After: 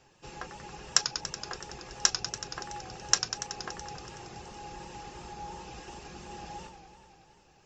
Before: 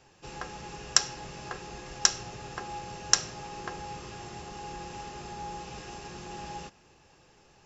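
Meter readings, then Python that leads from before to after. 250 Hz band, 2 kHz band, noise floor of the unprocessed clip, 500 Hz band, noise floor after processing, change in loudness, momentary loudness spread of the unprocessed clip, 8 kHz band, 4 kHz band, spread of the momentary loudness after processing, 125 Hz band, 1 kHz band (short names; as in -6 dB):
-3.0 dB, -1.5 dB, -61 dBFS, -3.0 dB, -62 dBFS, -0.5 dB, 16 LU, n/a, -1.0 dB, 18 LU, -3.0 dB, -2.5 dB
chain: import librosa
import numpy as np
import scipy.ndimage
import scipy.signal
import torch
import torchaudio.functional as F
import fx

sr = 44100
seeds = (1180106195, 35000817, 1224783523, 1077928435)

y = fx.dereverb_blind(x, sr, rt60_s=0.72)
y = fx.echo_warbled(y, sr, ms=94, feedback_pct=78, rate_hz=2.8, cents=149, wet_db=-10.0)
y = y * librosa.db_to_amplitude(-2.0)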